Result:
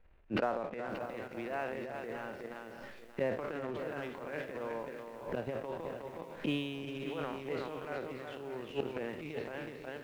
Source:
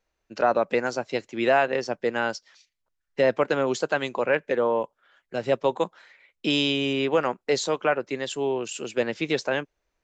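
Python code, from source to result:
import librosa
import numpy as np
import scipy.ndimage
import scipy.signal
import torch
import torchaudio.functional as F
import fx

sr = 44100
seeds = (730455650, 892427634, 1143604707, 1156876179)

p1 = fx.spec_trails(x, sr, decay_s=0.41)
p2 = scipy.signal.sosfilt(scipy.signal.butter(4, 2900.0, 'lowpass', fs=sr, output='sos'), p1)
p3 = fx.low_shelf(p2, sr, hz=86.0, db=10.5)
p4 = p3 + fx.echo_single(p3, sr, ms=368, db=-7.0, dry=0)
p5 = fx.gate_flip(p4, sr, shuts_db=-21.0, range_db=-27)
p6 = fx.leveller(p5, sr, passes=1)
p7 = fx.transient(p6, sr, attack_db=-12, sustain_db=7)
p8 = fx.low_shelf(p7, sr, hz=370.0, db=5.0)
p9 = fx.echo_crushed(p8, sr, ms=582, feedback_pct=35, bits=10, wet_db=-10.5)
y = p9 * librosa.db_to_amplitude(4.5)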